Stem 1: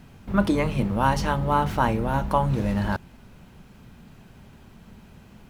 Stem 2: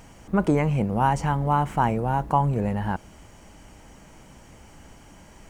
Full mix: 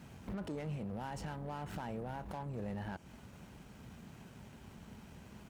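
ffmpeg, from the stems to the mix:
ffmpeg -i stem1.wav -i stem2.wav -filter_complex "[0:a]acompressor=threshold=-25dB:ratio=2.5,aeval=exprs='(tanh(50.1*val(0)+0.6)-tanh(0.6))/50.1':channel_layout=same,volume=-2dB[link_01];[1:a]alimiter=limit=-20dB:level=0:latency=1:release=16,adelay=4.3,volume=-14dB,asplit=2[link_02][link_03];[link_03]apad=whole_len=242538[link_04];[link_01][link_04]sidechaincompress=threshold=-51dB:ratio=5:attack=7.1:release=165[link_05];[link_05][link_02]amix=inputs=2:normalize=0,highpass=52" out.wav

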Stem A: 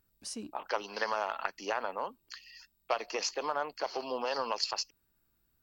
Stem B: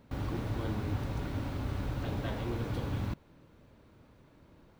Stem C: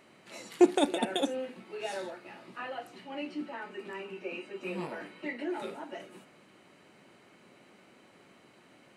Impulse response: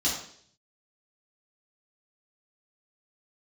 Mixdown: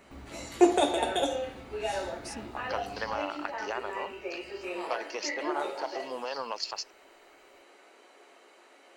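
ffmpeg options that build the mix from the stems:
-filter_complex "[0:a]adelay=2000,volume=-2dB[link_01];[1:a]acompressor=threshold=-42dB:ratio=6,volume=-4.5dB,asplit=2[link_02][link_03];[link_03]volume=-10dB[link_04];[2:a]highpass=frequency=400:width=0.5412,highpass=frequency=400:width=1.3066,volume=2dB,asplit=2[link_05][link_06];[link_06]volume=-11.5dB[link_07];[3:a]atrim=start_sample=2205[link_08];[link_04][link_07]amix=inputs=2:normalize=0[link_09];[link_09][link_08]afir=irnorm=-1:irlink=0[link_10];[link_01][link_02][link_05][link_10]amix=inputs=4:normalize=0,bandreject=frequency=50:width_type=h:width=6,bandreject=frequency=100:width_type=h:width=6,bandreject=frequency=150:width_type=h:width=6"

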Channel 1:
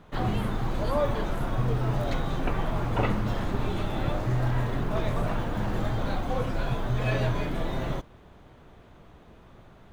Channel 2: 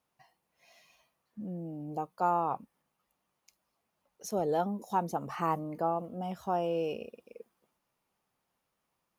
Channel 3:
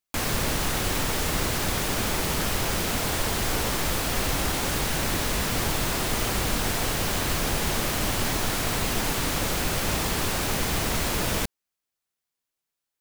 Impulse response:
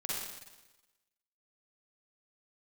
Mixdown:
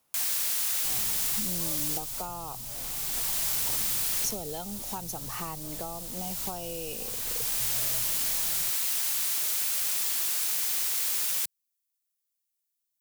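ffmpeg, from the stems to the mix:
-filter_complex "[0:a]equalizer=frequency=910:width=1.5:gain=6.5,adelay=700,volume=-19.5dB[link_01];[1:a]highshelf=frequency=4700:gain=11.5,acontrast=80,volume=-3dB,asplit=2[link_02][link_03];[2:a]aderivative,volume=1dB[link_04];[link_03]apad=whole_len=573490[link_05];[link_04][link_05]sidechaincompress=threshold=-33dB:ratio=8:attack=16:release=891[link_06];[link_01][link_02][link_06]amix=inputs=3:normalize=0,acrossover=split=120|3000[link_07][link_08][link_09];[link_08]acompressor=threshold=-37dB:ratio=6[link_10];[link_07][link_10][link_09]amix=inputs=3:normalize=0"

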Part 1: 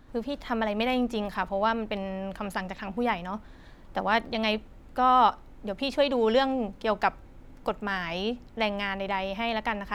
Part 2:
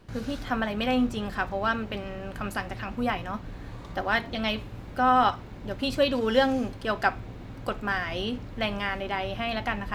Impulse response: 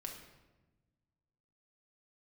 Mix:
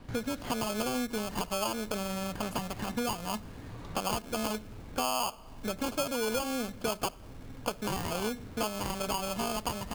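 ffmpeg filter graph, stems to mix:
-filter_complex "[0:a]acrusher=samples=23:mix=1:aa=0.000001,adynamicequalizer=threshold=0.0112:dfrequency=3600:dqfactor=0.7:tfrequency=3600:tqfactor=0.7:attack=5:release=100:ratio=0.375:range=2.5:mode=boostabove:tftype=highshelf,volume=0dB,asplit=3[link_01][link_02][link_03];[link_02]volume=-17dB[link_04];[1:a]highpass=53,acompressor=threshold=-31dB:ratio=6,asoftclip=type=tanh:threshold=-33dB,adelay=0.9,volume=1dB[link_05];[link_03]apad=whole_len=438609[link_06];[link_05][link_06]sidechaincompress=threshold=-29dB:ratio=8:attack=9.4:release=1410[link_07];[2:a]atrim=start_sample=2205[link_08];[link_04][link_08]afir=irnorm=-1:irlink=0[link_09];[link_01][link_07][link_09]amix=inputs=3:normalize=0,acompressor=threshold=-29dB:ratio=5"

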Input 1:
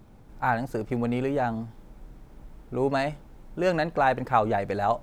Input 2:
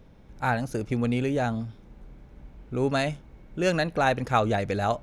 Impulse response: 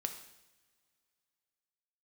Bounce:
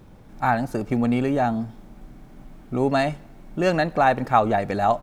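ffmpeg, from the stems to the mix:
-filter_complex "[0:a]volume=2dB,asplit=3[link_01][link_02][link_03];[link_02]volume=-13.5dB[link_04];[1:a]volume=-1,adelay=1.9,volume=0dB[link_05];[link_03]apad=whole_len=221665[link_06];[link_05][link_06]sidechaincompress=threshold=-24dB:ratio=8:attack=16:release=938[link_07];[2:a]atrim=start_sample=2205[link_08];[link_04][link_08]afir=irnorm=-1:irlink=0[link_09];[link_01][link_07][link_09]amix=inputs=3:normalize=0"

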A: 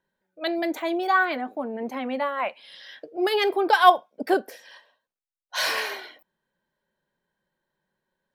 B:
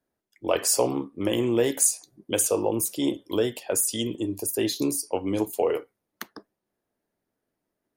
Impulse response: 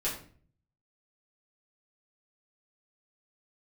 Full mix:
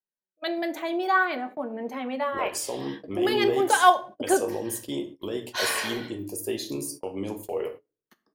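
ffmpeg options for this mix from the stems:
-filter_complex "[0:a]volume=-4dB,asplit=2[link_01][link_02];[link_02]volume=-12.5dB[link_03];[1:a]highshelf=frequency=8000:gain=-2.5,bandreject=frequency=1500:width=15,alimiter=limit=-16dB:level=0:latency=1:release=119,adelay=1900,volume=-7.5dB,asplit=2[link_04][link_05];[link_05]volume=-7.5dB[link_06];[2:a]atrim=start_sample=2205[link_07];[link_03][link_06]amix=inputs=2:normalize=0[link_08];[link_08][link_07]afir=irnorm=-1:irlink=0[link_09];[link_01][link_04][link_09]amix=inputs=3:normalize=0,agate=range=-23dB:threshold=-39dB:ratio=16:detection=peak"

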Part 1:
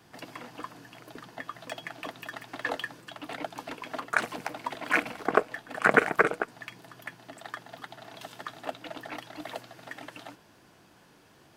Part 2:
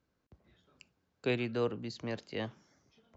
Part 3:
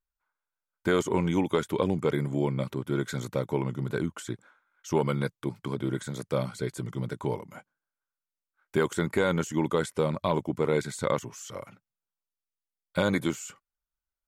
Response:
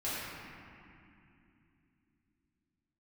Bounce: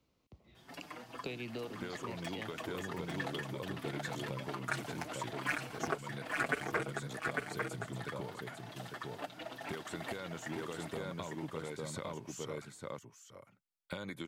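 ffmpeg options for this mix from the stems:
-filter_complex "[0:a]asplit=2[link_01][link_02];[link_02]adelay=5.8,afreqshift=1.9[link_03];[link_01][link_03]amix=inputs=2:normalize=1,adelay=550,volume=-2dB,asplit=2[link_04][link_05];[link_05]volume=-5dB[link_06];[1:a]equalizer=frequency=1600:width=4.2:gain=-14.5,volume=2.5dB[link_07];[2:a]adelay=950,volume=-7dB,asplit=2[link_08][link_09];[link_09]volume=-8.5dB[link_10];[link_07][link_08]amix=inputs=2:normalize=0,equalizer=frequency=2700:width=0.72:gain=5,acompressor=threshold=-37dB:ratio=12,volume=0dB[link_11];[link_06][link_10]amix=inputs=2:normalize=0,aecho=0:1:850:1[link_12];[link_04][link_11][link_12]amix=inputs=3:normalize=0,acrossover=split=130|3000[link_13][link_14][link_15];[link_14]acompressor=threshold=-39dB:ratio=2[link_16];[link_13][link_16][link_15]amix=inputs=3:normalize=0"

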